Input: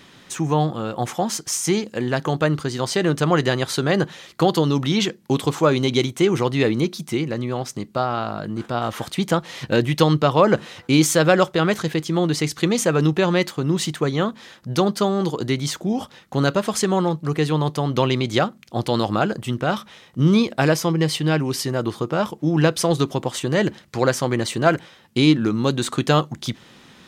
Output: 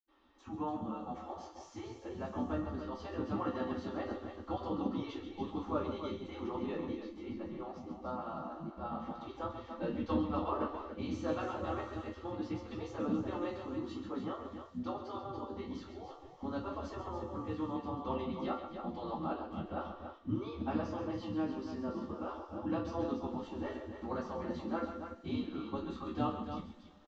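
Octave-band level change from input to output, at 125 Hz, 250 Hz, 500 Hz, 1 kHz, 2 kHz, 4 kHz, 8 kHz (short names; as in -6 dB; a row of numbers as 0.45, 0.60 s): -23.5 dB, -16.5 dB, -19.5 dB, -16.0 dB, -25.0 dB, -27.0 dB, under -35 dB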